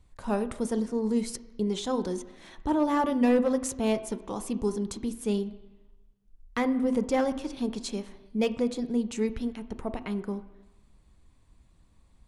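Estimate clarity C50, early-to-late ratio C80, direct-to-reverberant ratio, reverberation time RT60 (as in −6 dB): 13.5 dB, 15.5 dB, 10.0 dB, 1.1 s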